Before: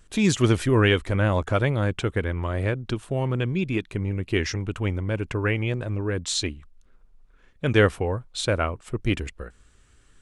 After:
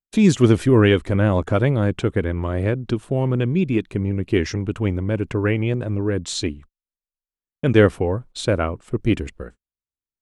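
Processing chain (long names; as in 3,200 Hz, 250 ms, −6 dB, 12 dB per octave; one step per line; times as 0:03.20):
noise gate −42 dBFS, range −46 dB
parametric band 250 Hz +8 dB 2.8 octaves
level −1 dB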